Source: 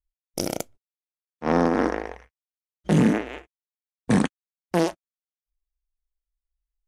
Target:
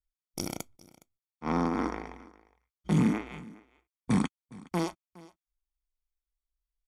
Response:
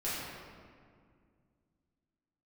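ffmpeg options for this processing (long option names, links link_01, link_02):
-filter_complex "[0:a]aecho=1:1:0.9:0.56,asplit=2[link_01][link_02];[link_02]aecho=0:1:414:0.0841[link_03];[link_01][link_03]amix=inputs=2:normalize=0,volume=-8dB"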